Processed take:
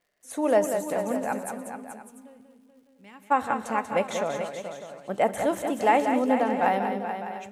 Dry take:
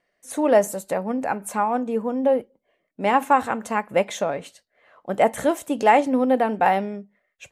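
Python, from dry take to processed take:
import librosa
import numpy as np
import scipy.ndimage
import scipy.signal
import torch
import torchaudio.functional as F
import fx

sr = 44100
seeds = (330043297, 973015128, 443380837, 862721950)

y = fx.tone_stack(x, sr, knobs='6-0-2', at=(1.49, 3.3), fade=0.02)
y = fx.dmg_crackle(y, sr, seeds[0], per_s=170.0, level_db=-53.0)
y = fx.echo_multitap(y, sr, ms=(124, 190, 430, 602, 695), db=(-19.5, -7.5, -9.5, -13.5, -17.5))
y = fx.rev_plate(y, sr, seeds[1], rt60_s=2.1, hf_ratio=1.0, predelay_ms=0, drr_db=18.5)
y = F.gain(torch.from_numpy(y), -5.0).numpy()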